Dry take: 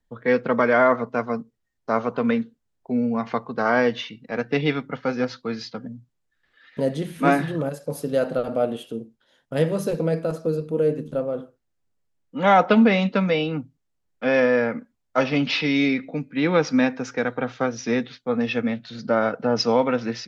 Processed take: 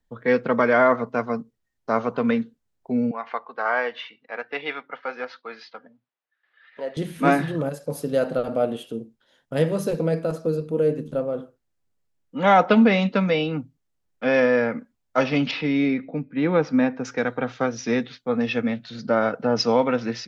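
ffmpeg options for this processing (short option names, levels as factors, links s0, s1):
-filter_complex "[0:a]asettb=1/sr,asplit=3[s0][s1][s2];[s0]atrim=end=3.114[s3];[s1]atrim=start=3.11:end=6.97,asetpts=PTS-STARTPTS,afade=t=in:d=0.004:c=qsin,afade=t=out:st=3.856:d=0.004:c=qsin,highpass=710,lowpass=2800[s4];[s2]atrim=start=6.966[s5];[s3][s4]acrossfade=d=0.004:c1=hsin:c2=qsin[s6];[s6][s5]acrossfade=d=0.004:c1=qsin:c2=hsin,asettb=1/sr,asplit=3[s7][s8][s9];[s7]atrim=end=15.514[s10];[s8]atrim=start=15.51:end=17.05,asetpts=PTS-STARTPTS,afade=t=in:d=0.004:c=qsin,afade=t=out:st=1.536:d=0.004:c=qsin,lowpass=f=1400:p=1[s11];[s9]atrim=start=17.046[s12];[s10][s11]acrossfade=d=0.004:c1=hsin:c2=qsin[s13];[s13][s12]acrossfade=d=0.004:c1=qsin:c2=hsin"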